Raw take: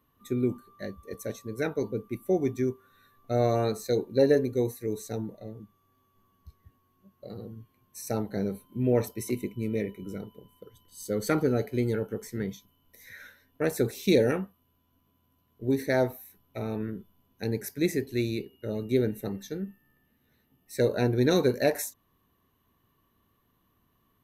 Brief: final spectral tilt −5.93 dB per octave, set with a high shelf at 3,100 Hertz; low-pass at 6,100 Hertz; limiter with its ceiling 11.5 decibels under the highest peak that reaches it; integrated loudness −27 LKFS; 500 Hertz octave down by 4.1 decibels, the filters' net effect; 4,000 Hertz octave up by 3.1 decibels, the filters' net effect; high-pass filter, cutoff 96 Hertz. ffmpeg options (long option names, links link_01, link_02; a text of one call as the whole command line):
ffmpeg -i in.wav -af "highpass=96,lowpass=6100,equalizer=frequency=500:width_type=o:gain=-5,highshelf=frequency=3100:gain=-5.5,equalizer=frequency=4000:width_type=o:gain=7.5,volume=8dB,alimiter=limit=-13.5dB:level=0:latency=1" out.wav